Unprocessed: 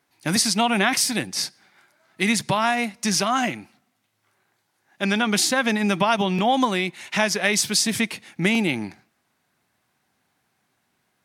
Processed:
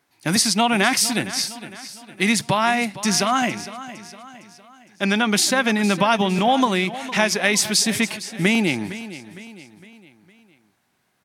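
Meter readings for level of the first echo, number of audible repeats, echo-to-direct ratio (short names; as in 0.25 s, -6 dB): -15.0 dB, 3, -14.0 dB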